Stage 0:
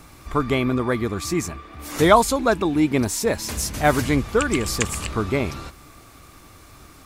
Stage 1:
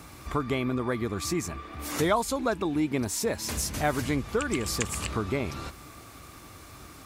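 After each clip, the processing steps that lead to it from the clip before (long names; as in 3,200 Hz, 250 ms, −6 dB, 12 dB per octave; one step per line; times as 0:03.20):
high-pass filter 50 Hz
downward compressor 2 to 1, threshold −30 dBFS, peak gain reduction 12 dB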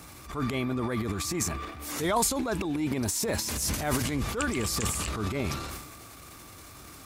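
high-shelf EQ 4,400 Hz +5 dB
transient designer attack −10 dB, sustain +10 dB
level −1.5 dB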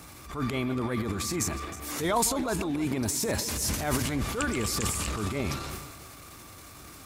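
feedback delay that plays each chunk backwards 160 ms, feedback 51%, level −13 dB
level that may rise only so fast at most 120 dB per second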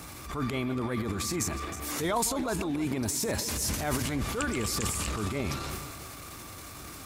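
downward compressor 1.5 to 1, threshold −39 dBFS, peak gain reduction 6.5 dB
level +3.5 dB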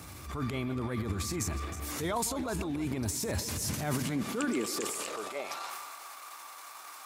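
high-pass filter sweep 74 Hz → 910 Hz, 0:03.28–0:05.73
level −4 dB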